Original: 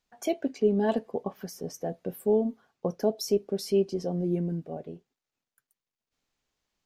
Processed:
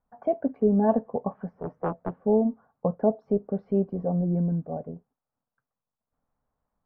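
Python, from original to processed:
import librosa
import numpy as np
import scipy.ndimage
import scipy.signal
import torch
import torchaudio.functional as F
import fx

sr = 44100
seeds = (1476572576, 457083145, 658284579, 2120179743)

y = scipy.signal.sosfilt(scipy.signal.butter(4, 1200.0, 'lowpass', fs=sr, output='sos'), x)
y = fx.peak_eq(y, sr, hz=360.0, db=-13.5, octaves=0.38)
y = fx.doppler_dist(y, sr, depth_ms=0.92, at=(1.52, 2.13))
y = y * 10.0 ** (6.0 / 20.0)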